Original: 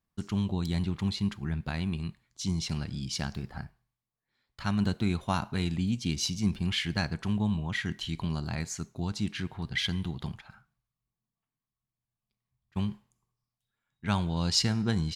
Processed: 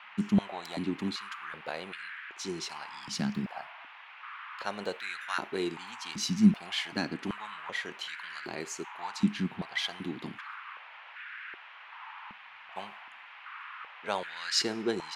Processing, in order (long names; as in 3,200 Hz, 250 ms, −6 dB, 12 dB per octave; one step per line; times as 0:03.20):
noise in a band 840–2,800 Hz −48 dBFS
high-pass on a step sequencer 2.6 Hz 210–1,600 Hz
level −2.5 dB